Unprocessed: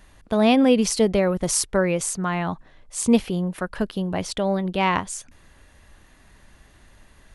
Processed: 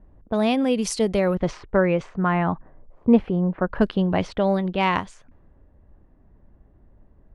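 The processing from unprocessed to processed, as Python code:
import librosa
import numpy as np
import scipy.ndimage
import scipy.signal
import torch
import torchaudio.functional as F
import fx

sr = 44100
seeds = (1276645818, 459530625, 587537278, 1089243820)

y = fx.lowpass(x, sr, hz=fx.line((1.34, 3000.0), (3.69, 1200.0)), slope=12, at=(1.34, 3.69), fade=0.02)
y = fx.env_lowpass(y, sr, base_hz=490.0, full_db=-17.0)
y = fx.rider(y, sr, range_db=10, speed_s=0.5)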